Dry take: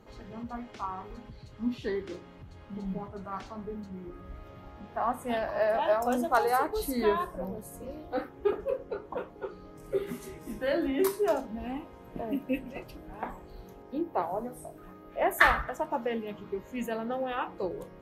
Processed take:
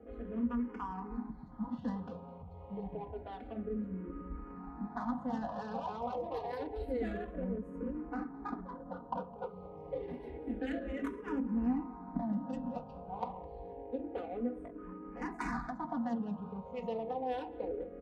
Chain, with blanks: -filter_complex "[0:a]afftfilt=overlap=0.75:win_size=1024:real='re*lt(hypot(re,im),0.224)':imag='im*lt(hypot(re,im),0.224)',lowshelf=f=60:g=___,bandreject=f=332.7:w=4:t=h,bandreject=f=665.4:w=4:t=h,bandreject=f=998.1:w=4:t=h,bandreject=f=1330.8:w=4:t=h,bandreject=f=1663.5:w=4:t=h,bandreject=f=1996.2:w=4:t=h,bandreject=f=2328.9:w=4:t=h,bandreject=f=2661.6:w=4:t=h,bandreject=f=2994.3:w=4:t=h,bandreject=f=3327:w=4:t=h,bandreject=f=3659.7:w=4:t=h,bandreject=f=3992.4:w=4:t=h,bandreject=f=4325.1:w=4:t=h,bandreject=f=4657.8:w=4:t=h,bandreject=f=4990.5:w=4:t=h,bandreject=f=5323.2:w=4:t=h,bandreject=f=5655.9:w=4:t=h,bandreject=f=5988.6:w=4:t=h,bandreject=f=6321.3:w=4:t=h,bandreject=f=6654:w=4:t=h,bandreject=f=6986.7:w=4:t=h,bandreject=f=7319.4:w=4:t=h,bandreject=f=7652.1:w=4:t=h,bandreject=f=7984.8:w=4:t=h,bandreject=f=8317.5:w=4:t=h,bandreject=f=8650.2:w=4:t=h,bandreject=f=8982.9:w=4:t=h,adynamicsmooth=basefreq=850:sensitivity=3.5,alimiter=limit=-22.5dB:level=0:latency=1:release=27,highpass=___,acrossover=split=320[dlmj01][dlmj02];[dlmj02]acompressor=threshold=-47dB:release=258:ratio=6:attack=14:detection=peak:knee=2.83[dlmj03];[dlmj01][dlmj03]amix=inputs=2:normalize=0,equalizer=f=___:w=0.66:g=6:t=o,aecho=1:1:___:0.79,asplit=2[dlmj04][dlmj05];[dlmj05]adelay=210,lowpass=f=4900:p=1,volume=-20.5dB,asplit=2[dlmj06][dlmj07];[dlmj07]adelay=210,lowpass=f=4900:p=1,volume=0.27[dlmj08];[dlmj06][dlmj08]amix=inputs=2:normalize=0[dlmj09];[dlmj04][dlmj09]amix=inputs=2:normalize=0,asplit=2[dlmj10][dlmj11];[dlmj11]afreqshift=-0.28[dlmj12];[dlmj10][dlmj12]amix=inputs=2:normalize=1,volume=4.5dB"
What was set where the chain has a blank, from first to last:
-5, 43, 870, 4.1